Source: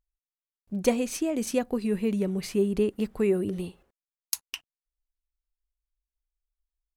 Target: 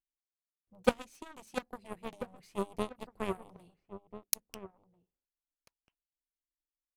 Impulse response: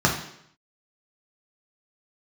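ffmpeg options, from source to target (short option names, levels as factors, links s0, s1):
-filter_complex "[0:a]aeval=exprs='0.501*(cos(1*acos(clip(val(0)/0.501,-1,1)))-cos(1*PI/2))+0.02*(cos(3*acos(clip(val(0)/0.501,-1,1)))-cos(3*PI/2))+0.0708*(cos(7*acos(clip(val(0)/0.501,-1,1)))-cos(7*PI/2))':c=same,asplit=2[s0][s1];[s1]adelay=1341,volume=0.251,highshelf=f=4000:g=-30.2[s2];[s0][s2]amix=inputs=2:normalize=0,tremolo=f=300:d=0.519"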